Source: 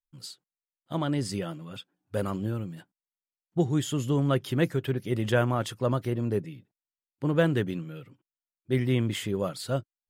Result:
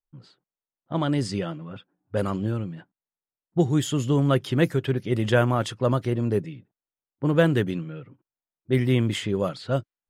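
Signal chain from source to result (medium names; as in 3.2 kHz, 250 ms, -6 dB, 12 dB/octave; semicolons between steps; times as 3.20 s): level-controlled noise filter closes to 1.1 kHz, open at -22.5 dBFS; trim +4 dB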